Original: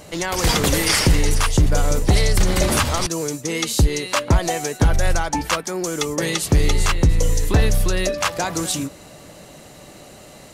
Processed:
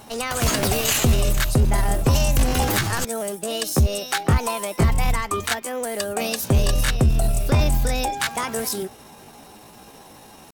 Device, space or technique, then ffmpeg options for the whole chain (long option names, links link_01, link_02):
chipmunk voice: -af "asetrate=60591,aresample=44100,atempo=0.727827,volume=-2.5dB"